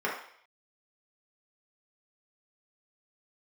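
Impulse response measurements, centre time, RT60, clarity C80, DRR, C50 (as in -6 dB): 37 ms, 0.60 s, 8.5 dB, -6.0 dB, 4.5 dB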